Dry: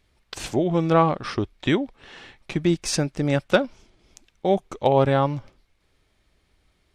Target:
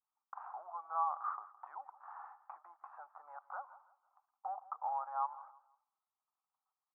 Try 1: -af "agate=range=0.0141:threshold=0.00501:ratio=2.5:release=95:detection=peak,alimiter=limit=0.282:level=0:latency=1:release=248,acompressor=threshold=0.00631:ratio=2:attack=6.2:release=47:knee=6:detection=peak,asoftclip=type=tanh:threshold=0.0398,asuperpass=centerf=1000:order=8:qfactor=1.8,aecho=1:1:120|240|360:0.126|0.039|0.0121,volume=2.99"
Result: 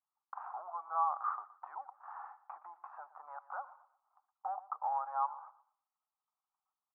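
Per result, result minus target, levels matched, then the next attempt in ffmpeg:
echo 45 ms early; compression: peak gain reduction -3.5 dB
-af "agate=range=0.0141:threshold=0.00501:ratio=2.5:release=95:detection=peak,alimiter=limit=0.282:level=0:latency=1:release=248,acompressor=threshold=0.00631:ratio=2:attack=6.2:release=47:knee=6:detection=peak,asoftclip=type=tanh:threshold=0.0398,asuperpass=centerf=1000:order=8:qfactor=1.8,aecho=1:1:165|330|495:0.126|0.039|0.0121,volume=2.99"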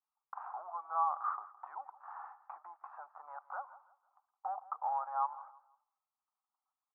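compression: peak gain reduction -3.5 dB
-af "agate=range=0.0141:threshold=0.00501:ratio=2.5:release=95:detection=peak,alimiter=limit=0.282:level=0:latency=1:release=248,acompressor=threshold=0.00282:ratio=2:attack=6.2:release=47:knee=6:detection=peak,asoftclip=type=tanh:threshold=0.0398,asuperpass=centerf=1000:order=8:qfactor=1.8,aecho=1:1:165|330|495:0.126|0.039|0.0121,volume=2.99"

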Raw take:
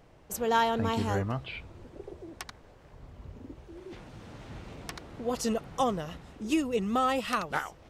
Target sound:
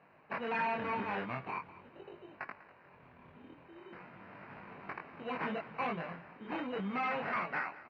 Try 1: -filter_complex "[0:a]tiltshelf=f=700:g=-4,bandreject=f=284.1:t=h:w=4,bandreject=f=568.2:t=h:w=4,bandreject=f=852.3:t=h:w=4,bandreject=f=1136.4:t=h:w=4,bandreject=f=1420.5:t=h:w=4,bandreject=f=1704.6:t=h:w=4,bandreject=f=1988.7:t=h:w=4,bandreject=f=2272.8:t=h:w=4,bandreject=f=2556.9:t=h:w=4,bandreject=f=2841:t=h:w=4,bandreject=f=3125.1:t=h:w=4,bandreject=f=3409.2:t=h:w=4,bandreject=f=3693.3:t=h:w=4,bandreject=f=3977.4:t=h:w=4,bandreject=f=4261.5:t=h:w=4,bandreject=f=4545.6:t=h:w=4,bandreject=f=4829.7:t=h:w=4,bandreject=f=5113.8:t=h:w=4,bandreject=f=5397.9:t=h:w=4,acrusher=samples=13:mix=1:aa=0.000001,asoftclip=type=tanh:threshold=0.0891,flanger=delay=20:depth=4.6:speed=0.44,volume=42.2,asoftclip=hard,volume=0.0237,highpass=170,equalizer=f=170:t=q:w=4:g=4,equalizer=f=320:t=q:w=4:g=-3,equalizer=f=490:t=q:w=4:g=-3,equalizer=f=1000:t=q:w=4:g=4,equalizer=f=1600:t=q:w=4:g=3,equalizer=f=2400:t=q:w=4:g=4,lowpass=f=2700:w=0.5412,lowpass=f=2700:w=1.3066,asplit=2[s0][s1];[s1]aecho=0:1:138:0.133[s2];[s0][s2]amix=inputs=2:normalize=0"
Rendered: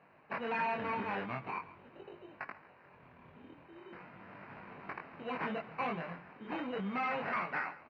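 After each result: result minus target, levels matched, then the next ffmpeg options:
saturation: distortion +10 dB; echo 59 ms early
-filter_complex "[0:a]tiltshelf=f=700:g=-4,bandreject=f=284.1:t=h:w=4,bandreject=f=568.2:t=h:w=4,bandreject=f=852.3:t=h:w=4,bandreject=f=1136.4:t=h:w=4,bandreject=f=1420.5:t=h:w=4,bandreject=f=1704.6:t=h:w=4,bandreject=f=1988.7:t=h:w=4,bandreject=f=2272.8:t=h:w=4,bandreject=f=2556.9:t=h:w=4,bandreject=f=2841:t=h:w=4,bandreject=f=3125.1:t=h:w=4,bandreject=f=3409.2:t=h:w=4,bandreject=f=3693.3:t=h:w=4,bandreject=f=3977.4:t=h:w=4,bandreject=f=4261.5:t=h:w=4,bandreject=f=4545.6:t=h:w=4,bandreject=f=4829.7:t=h:w=4,bandreject=f=5113.8:t=h:w=4,bandreject=f=5397.9:t=h:w=4,acrusher=samples=13:mix=1:aa=0.000001,asoftclip=type=tanh:threshold=0.224,flanger=delay=20:depth=4.6:speed=0.44,volume=42.2,asoftclip=hard,volume=0.0237,highpass=170,equalizer=f=170:t=q:w=4:g=4,equalizer=f=320:t=q:w=4:g=-3,equalizer=f=490:t=q:w=4:g=-3,equalizer=f=1000:t=q:w=4:g=4,equalizer=f=1600:t=q:w=4:g=3,equalizer=f=2400:t=q:w=4:g=4,lowpass=f=2700:w=0.5412,lowpass=f=2700:w=1.3066,asplit=2[s0][s1];[s1]aecho=0:1:138:0.133[s2];[s0][s2]amix=inputs=2:normalize=0"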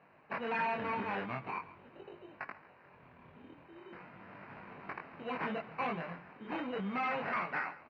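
echo 59 ms early
-filter_complex "[0:a]tiltshelf=f=700:g=-4,bandreject=f=284.1:t=h:w=4,bandreject=f=568.2:t=h:w=4,bandreject=f=852.3:t=h:w=4,bandreject=f=1136.4:t=h:w=4,bandreject=f=1420.5:t=h:w=4,bandreject=f=1704.6:t=h:w=4,bandreject=f=1988.7:t=h:w=4,bandreject=f=2272.8:t=h:w=4,bandreject=f=2556.9:t=h:w=4,bandreject=f=2841:t=h:w=4,bandreject=f=3125.1:t=h:w=4,bandreject=f=3409.2:t=h:w=4,bandreject=f=3693.3:t=h:w=4,bandreject=f=3977.4:t=h:w=4,bandreject=f=4261.5:t=h:w=4,bandreject=f=4545.6:t=h:w=4,bandreject=f=4829.7:t=h:w=4,bandreject=f=5113.8:t=h:w=4,bandreject=f=5397.9:t=h:w=4,acrusher=samples=13:mix=1:aa=0.000001,asoftclip=type=tanh:threshold=0.224,flanger=delay=20:depth=4.6:speed=0.44,volume=42.2,asoftclip=hard,volume=0.0237,highpass=170,equalizer=f=170:t=q:w=4:g=4,equalizer=f=320:t=q:w=4:g=-3,equalizer=f=490:t=q:w=4:g=-3,equalizer=f=1000:t=q:w=4:g=4,equalizer=f=1600:t=q:w=4:g=3,equalizer=f=2400:t=q:w=4:g=4,lowpass=f=2700:w=0.5412,lowpass=f=2700:w=1.3066,asplit=2[s0][s1];[s1]aecho=0:1:197:0.133[s2];[s0][s2]amix=inputs=2:normalize=0"

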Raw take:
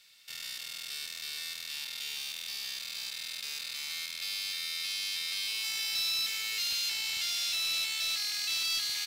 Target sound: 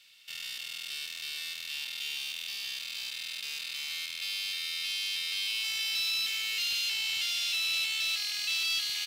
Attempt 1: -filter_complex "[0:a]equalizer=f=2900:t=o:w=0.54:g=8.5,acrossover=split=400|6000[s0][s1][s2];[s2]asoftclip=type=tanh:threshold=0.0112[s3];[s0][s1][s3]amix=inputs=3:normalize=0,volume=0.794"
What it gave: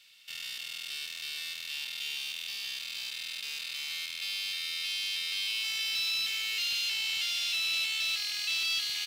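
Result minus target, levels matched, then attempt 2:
saturation: distortion +14 dB
-filter_complex "[0:a]equalizer=f=2900:t=o:w=0.54:g=8.5,acrossover=split=400|6000[s0][s1][s2];[s2]asoftclip=type=tanh:threshold=0.0335[s3];[s0][s1][s3]amix=inputs=3:normalize=0,volume=0.794"

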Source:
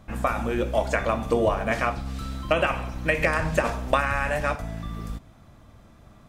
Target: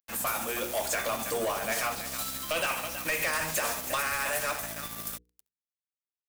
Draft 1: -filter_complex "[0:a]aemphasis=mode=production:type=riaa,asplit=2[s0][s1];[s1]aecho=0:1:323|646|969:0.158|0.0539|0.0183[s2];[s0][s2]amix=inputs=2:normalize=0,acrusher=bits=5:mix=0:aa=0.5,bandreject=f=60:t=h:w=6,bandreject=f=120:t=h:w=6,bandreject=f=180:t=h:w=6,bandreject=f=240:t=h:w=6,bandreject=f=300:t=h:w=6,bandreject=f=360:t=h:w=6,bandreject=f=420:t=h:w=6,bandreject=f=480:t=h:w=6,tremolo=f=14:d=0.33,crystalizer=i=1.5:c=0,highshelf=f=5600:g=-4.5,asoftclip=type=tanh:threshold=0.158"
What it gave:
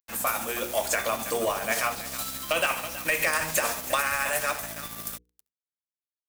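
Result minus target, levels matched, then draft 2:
saturation: distortion -8 dB
-filter_complex "[0:a]aemphasis=mode=production:type=riaa,asplit=2[s0][s1];[s1]aecho=0:1:323|646|969:0.158|0.0539|0.0183[s2];[s0][s2]amix=inputs=2:normalize=0,acrusher=bits=5:mix=0:aa=0.5,bandreject=f=60:t=h:w=6,bandreject=f=120:t=h:w=6,bandreject=f=180:t=h:w=6,bandreject=f=240:t=h:w=6,bandreject=f=300:t=h:w=6,bandreject=f=360:t=h:w=6,bandreject=f=420:t=h:w=6,bandreject=f=480:t=h:w=6,tremolo=f=14:d=0.33,crystalizer=i=1.5:c=0,highshelf=f=5600:g=-4.5,asoftclip=type=tanh:threshold=0.0562"

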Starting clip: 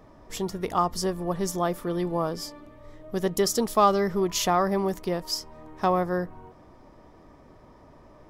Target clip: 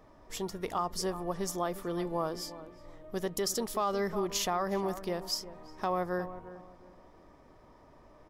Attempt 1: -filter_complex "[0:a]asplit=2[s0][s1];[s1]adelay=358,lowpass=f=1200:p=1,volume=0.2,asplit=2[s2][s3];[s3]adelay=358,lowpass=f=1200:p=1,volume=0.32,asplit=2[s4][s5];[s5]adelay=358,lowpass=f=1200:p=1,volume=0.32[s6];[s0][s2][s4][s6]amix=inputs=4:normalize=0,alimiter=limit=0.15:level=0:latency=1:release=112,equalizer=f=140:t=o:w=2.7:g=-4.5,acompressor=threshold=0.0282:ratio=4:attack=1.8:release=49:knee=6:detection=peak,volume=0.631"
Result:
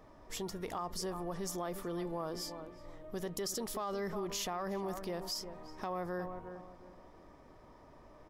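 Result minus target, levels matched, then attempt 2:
compression: peak gain reduction +8.5 dB
-filter_complex "[0:a]asplit=2[s0][s1];[s1]adelay=358,lowpass=f=1200:p=1,volume=0.2,asplit=2[s2][s3];[s3]adelay=358,lowpass=f=1200:p=1,volume=0.32,asplit=2[s4][s5];[s5]adelay=358,lowpass=f=1200:p=1,volume=0.32[s6];[s0][s2][s4][s6]amix=inputs=4:normalize=0,alimiter=limit=0.15:level=0:latency=1:release=112,equalizer=f=140:t=o:w=2.7:g=-4.5,volume=0.631"

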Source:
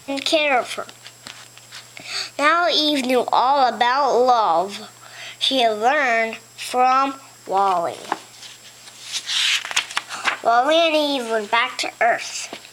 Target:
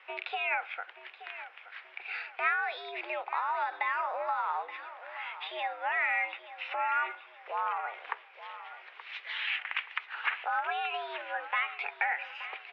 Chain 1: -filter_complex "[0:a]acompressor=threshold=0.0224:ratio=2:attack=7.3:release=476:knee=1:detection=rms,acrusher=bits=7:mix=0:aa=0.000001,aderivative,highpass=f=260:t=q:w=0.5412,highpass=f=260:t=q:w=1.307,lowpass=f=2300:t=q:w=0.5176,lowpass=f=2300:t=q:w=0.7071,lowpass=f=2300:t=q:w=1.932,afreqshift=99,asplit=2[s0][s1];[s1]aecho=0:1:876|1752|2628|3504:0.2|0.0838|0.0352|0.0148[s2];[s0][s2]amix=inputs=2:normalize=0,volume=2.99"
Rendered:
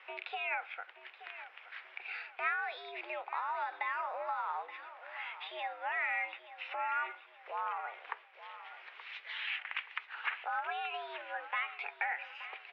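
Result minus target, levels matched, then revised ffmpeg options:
compression: peak gain reduction +5 dB
-filter_complex "[0:a]acompressor=threshold=0.0708:ratio=2:attack=7.3:release=476:knee=1:detection=rms,acrusher=bits=7:mix=0:aa=0.000001,aderivative,highpass=f=260:t=q:w=0.5412,highpass=f=260:t=q:w=1.307,lowpass=f=2300:t=q:w=0.5176,lowpass=f=2300:t=q:w=0.7071,lowpass=f=2300:t=q:w=1.932,afreqshift=99,asplit=2[s0][s1];[s1]aecho=0:1:876|1752|2628|3504:0.2|0.0838|0.0352|0.0148[s2];[s0][s2]amix=inputs=2:normalize=0,volume=2.99"

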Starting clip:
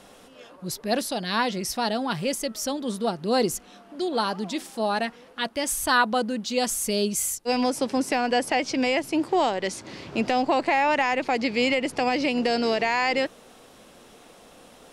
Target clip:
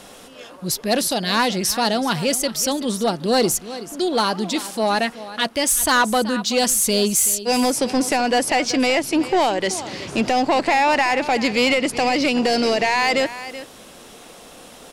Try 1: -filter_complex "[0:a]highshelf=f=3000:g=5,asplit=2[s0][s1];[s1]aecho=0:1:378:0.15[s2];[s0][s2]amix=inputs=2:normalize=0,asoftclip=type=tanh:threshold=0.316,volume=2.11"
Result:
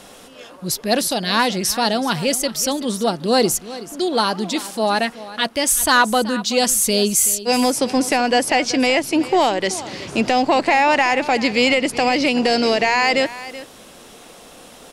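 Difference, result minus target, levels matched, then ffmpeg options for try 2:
saturation: distortion -10 dB
-filter_complex "[0:a]highshelf=f=3000:g=5,asplit=2[s0][s1];[s1]aecho=0:1:378:0.15[s2];[s0][s2]amix=inputs=2:normalize=0,asoftclip=type=tanh:threshold=0.141,volume=2.11"

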